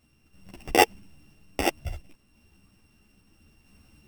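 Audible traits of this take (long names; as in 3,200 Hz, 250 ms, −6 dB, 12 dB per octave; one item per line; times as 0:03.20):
a buzz of ramps at a fixed pitch in blocks of 16 samples
sample-and-hold tremolo 3 Hz
a shimmering, thickened sound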